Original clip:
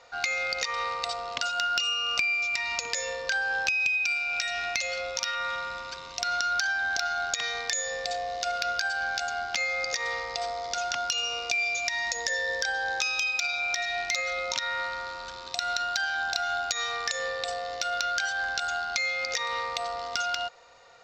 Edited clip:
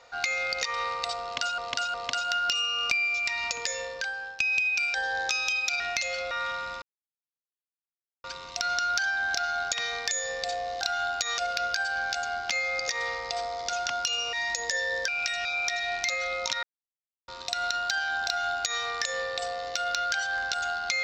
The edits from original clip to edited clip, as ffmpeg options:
-filter_complex "[0:a]asplit=15[s0][s1][s2][s3][s4][s5][s6][s7][s8][s9][s10][s11][s12][s13][s14];[s0]atrim=end=1.582[s15];[s1]atrim=start=1.218:end=1.582[s16];[s2]atrim=start=1.218:end=3.68,asetpts=PTS-STARTPTS,afade=t=out:st=1.492:d=0.97:c=qsin:silence=0.133352[s17];[s3]atrim=start=3.68:end=4.222,asetpts=PTS-STARTPTS,afade=t=in:d=0.004:c=hsin:silence=0.133352[s18];[s4]atrim=start=12.648:end=13.512[s19];[s5]atrim=start=4.588:end=5.102[s20];[s6]atrim=start=5.348:end=5.86,asetpts=PTS-STARTPTS,afade=t=out:st=0.508:d=0.004:c=hsin,apad=pad_dur=1.42[s21];[s7]atrim=start=5.86:end=8.432,asetpts=PTS-STARTPTS,afade=t=in:d=0.004:c=hsin[s22];[s8]atrim=start=16.308:end=16.882[s23];[s9]atrim=start=8.428:end=11.382[s24];[s10]atrim=start=11.898:end=12.652[s25];[s11]atrim=start=4.218:end=4.592[s26];[s12]atrim=start=13.508:end=14.69,asetpts=PTS-STARTPTS,afade=t=out:st=1.178:d=0.004:c=hsin[s27];[s13]atrim=start=14.69:end=15.34,asetpts=PTS-STARTPTS,volume=0[s28];[s14]atrim=start=15.34,asetpts=PTS-STARTPTS,afade=t=in:d=0.004:c=hsin[s29];[s15][s16]acrossfade=d=0.004:c1=hsin:c2=hsin[s30];[s17][s18]concat=n=2:v=0:a=1[s31];[s30][s31]acrossfade=d=0.004:c1=hsin:c2=hsin[s32];[s32][s19]acrossfade=d=0.004:c1=hsin:c2=hsin[s33];[s33][s20]acrossfade=d=0.004:c1=hsin:c2=hsin[s34];[s21][s22]concat=n=2:v=0:a=1[s35];[s34][s35]acrossfade=d=0.004:c1=hsin:c2=hsin[s36];[s36][s23]acrossfade=d=0.004:c1=hsin:c2=hsin[s37];[s37][s24]acrossfade=d=0.004:c1=hsin:c2=hsin[s38];[s38][s25]acrossfade=d=0.004:c1=hsin:c2=hsin[s39];[s39][s26]acrossfade=d=0.004:c1=hsin:c2=hsin[s40];[s27][s28][s29]concat=n=3:v=0:a=1[s41];[s40][s41]acrossfade=d=0.004:c1=hsin:c2=hsin"

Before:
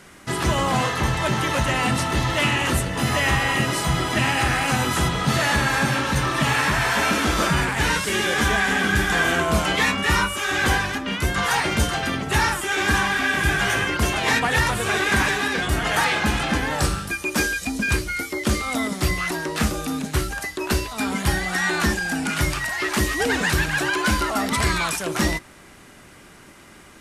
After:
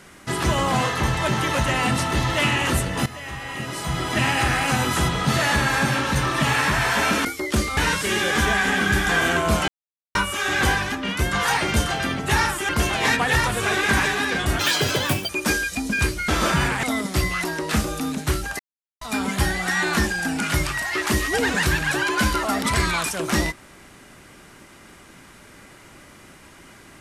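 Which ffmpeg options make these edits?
-filter_complex "[0:a]asplit=13[s0][s1][s2][s3][s4][s5][s6][s7][s8][s9][s10][s11][s12];[s0]atrim=end=3.06,asetpts=PTS-STARTPTS,afade=t=out:st=3.056:d=0.004:c=hsin:silence=0.177828[s13];[s1]atrim=start=3.06:end=7.252,asetpts=PTS-STARTPTS,afade=t=in:d=1.16:c=qua:silence=0.177828[s14];[s2]atrim=start=18.178:end=18.702[s15];[s3]atrim=start=7.798:end=9.71,asetpts=PTS-STARTPTS,afade=t=out:st=1.908:d=0.004:c=hsin[s16];[s4]atrim=start=9.71:end=10.18,asetpts=PTS-STARTPTS,volume=0[s17];[s5]atrim=start=10.18:end=12.722,asetpts=PTS-STARTPTS,afade=t=in:d=0.004:c=hsin[s18];[s6]atrim=start=13.918:end=15.824[s19];[s7]atrim=start=15.82:end=17.19,asetpts=PTS-STARTPTS,asetrate=85995,aresample=44100,atrim=end_sample=30983,asetpts=PTS-STARTPTS[s20];[s8]atrim=start=17.186:end=18.182[s21];[s9]atrim=start=7.248:end=7.802[s22];[s10]atrim=start=18.698:end=20.46,asetpts=PTS-STARTPTS,afade=t=out:st=1.758:d=0.004:c=hsin[s23];[s11]atrim=start=20.46:end=20.88,asetpts=PTS-STARTPTS,volume=0[s24];[s12]atrim=start=20.88,asetpts=PTS-STARTPTS,afade=t=in:d=0.004:c=hsin[s25];[s13][s14]concat=n=2:v=0:a=1[s26];[s26][s15]acrossfade=d=0.004:c1=hsin:c2=hsin[s27];[s16][s17][s18]concat=n=3:v=0:a=1[s28];[s27][s28]acrossfade=d=0.004:c1=hsin:c2=hsin[s29];[s29][s19]acrossfade=d=0.004:c1=hsin:c2=hsin[s30];[s30][s20]acrossfade=d=0.004:c1=hsin:c2=hsin[s31];[s31][s21]acrossfade=d=0.004:c1=hsin:c2=hsin[s32];[s32][s22]acrossfade=d=0.004:c1=hsin:c2=hsin[s33];[s23][s24][s25]concat=n=3:v=0:a=1[s34];[s33][s34]acrossfade=d=0.004:c1=hsin:c2=hsin"

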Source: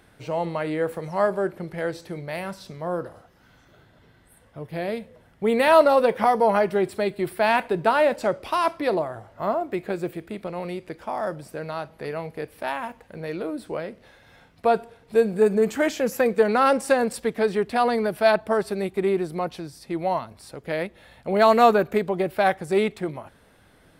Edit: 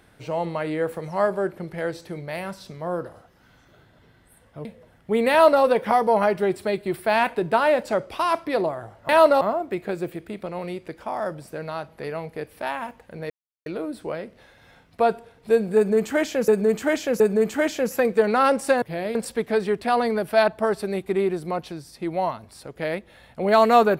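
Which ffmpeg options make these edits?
-filter_complex "[0:a]asplit=9[s0][s1][s2][s3][s4][s5][s6][s7][s8];[s0]atrim=end=4.652[s9];[s1]atrim=start=4.978:end=9.422[s10];[s2]atrim=start=5.638:end=5.962[s11];[s3]atrim=start=9.418:end=13.31,asetpts=PTS-STARTPTS,afade=t=out:st=3.888:d=0.004:c=hsin,apad=pad_dur=0.36[s12];[s4]atrim=start=13.31:end=16.132,asetpts=PTS-STARTPTS,afade=t=in:d=0.004:c=hsin[s13];[s5]atrim=start=15.408:end=16.132[s14];[s6]atrim=start=15.408:end=17.032[s15];[s7]atrim=start=4.648:end=4.982[s16];[s8]atrim=start=17.028[s17];[s9][s10]acrossfade=d=0.004:c1=hsin:c2=hsin[s18];[s18][s11]acrossfade=d=0.004:c1=hsin:c2=hsin[s19];[s12][s13]concat=n=2:v=0:a=1[s20];[s19][s20]acrossfade=d=0.004:c1=hsin:c2=hsin[s21];[s21][s14]acrossfade=d=0.004:c1=hsin:c2=hsin[s22];[s22][s15]acrossfade=d=0.004:c1=hsin:c2=hsin[s23];[s23][s16]acrossfade=d=0.004:c1=hsin:c2=hsin[s24];[s24][s17]acrossfade=d=0.004:c1=hsin:c2=hsin"

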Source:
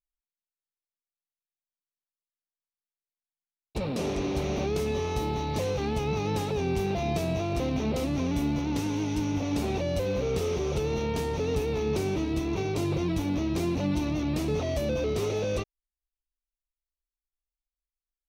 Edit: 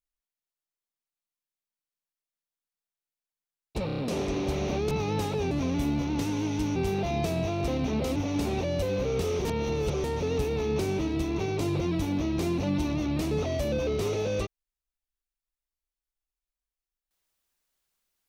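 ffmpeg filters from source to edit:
-filter_complex "[0:a]asplit=11[s0][s1][s2][s3][s4][s5][s6][s7][s8][s9][s10];[s0]atrim=end=3.892[s11];[s1]atrim=start=3.858:end=3.892[s12];[s2]atrim=start=3.858:end=3.892[s13];[s3]atrim=start=3.858:end=3.892[s14];[s4]atrim=start=3.858:end=4.792[s15];[s5]atrim=start=6.078:end=6.682[s16];[s6]atrim=start=8.078:end=9.332[s17];[s7]atrim=start=6.678:end=8.082[s18];[s8]atrim=start=9.328:end=10.622[s19];[s9]atrim=start=10.618:end=11.212,asetpts=PTS-STARTPTS,areverse[s20];[s10]atrim=start=11.208[s21];[s11][s12]acrossfade=d=0.004:c1=hsin:c2=hsin[s22];[s22][s13]acrossfade=d=0.004:c1=hsin:c2=hsin[s23];[s23][s14]acrossfade=d=0.004:c1=hsin:c2=hsin[s24];[s24][s15]acrossfade=d=0.004:c1=hsin:c2=hsin[s25];[s25][s16]acrossfade=d=0.004:c1=hsin:c2=hsin[s26];[s26][s17]acrossfade=d=0.004:c1=hsin:c2=hsin[s27];[s27][s18]acrossfade=d=0.004:c1=hsin:c2=hsin[s28];[s28][s19]acrossfade=d=0.004:c1=hsin:c2=hsin[s29];[s29][s20]acrossfade=d=0.004:c1=hsin:c2=hsin[s30];[s30][s21]acrossfade=d=0.004:c1=hsin:c2=hsin"

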